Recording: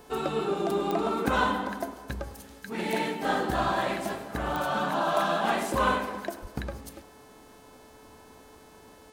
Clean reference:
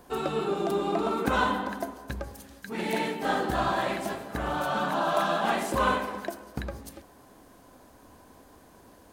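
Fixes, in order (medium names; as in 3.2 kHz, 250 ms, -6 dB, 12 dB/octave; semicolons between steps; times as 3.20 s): de-click; de-hum 434.8 Hz, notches 25; 6.41–6.53 s: high-pass 140 Hz 24 dB/octave; inverse comb 102 ms -19 dB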